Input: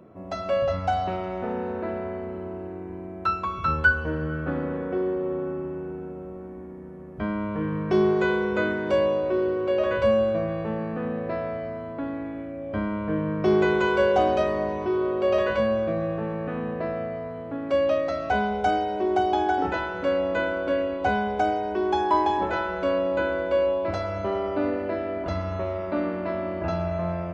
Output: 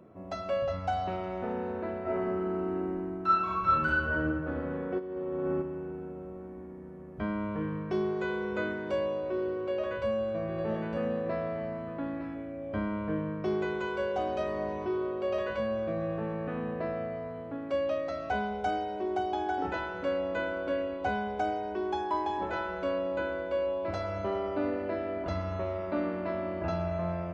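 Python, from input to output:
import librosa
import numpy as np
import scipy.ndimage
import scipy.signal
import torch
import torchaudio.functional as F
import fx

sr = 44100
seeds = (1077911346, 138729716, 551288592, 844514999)

y = fx.reverb_throw(x, sr, start_s=2.02, length_s=2.2, rt60_s=1.1, drr_db=-9.5)
y = fx.over_compress(y, sr, threshold_db=-30.0, ratio=-0.5, at=(4.98, 5.61), fade=0.02)
y = fx.echo_single(y, sr, ms=909, db=-11.0, at=(10.48, 12.34), fade=0.02)
y = fx.rider(y, sr, range_db=4, speed_s=0.5)
y = F.gain(torch.from_numpy(y), -8.5).numpy()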